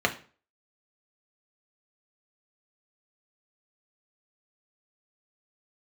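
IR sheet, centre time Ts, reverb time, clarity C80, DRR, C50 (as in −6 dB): 9 ms, 0.40 s, 19.0 dB, 2.0 dB, 14.0 dB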